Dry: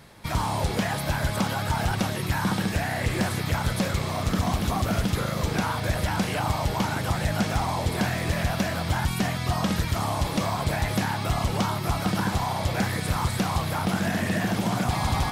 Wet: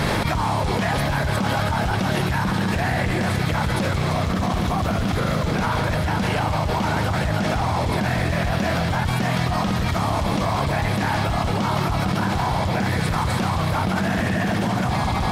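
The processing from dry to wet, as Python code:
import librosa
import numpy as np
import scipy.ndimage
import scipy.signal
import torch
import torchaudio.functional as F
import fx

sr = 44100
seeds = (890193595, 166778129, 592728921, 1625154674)

y = fx.lowpass(x, sr, hz=3900.0, slope=6)
y = fx.echo_split(y, sr, split_hz=540.0, low_ms=614, high_ms=168, feedback_pct=52, wet_db=-8.0)
y = fx.env_flatten(y, sr, amount_pct=100)
y = y * 10.0 ** (-3.0 / 20.0)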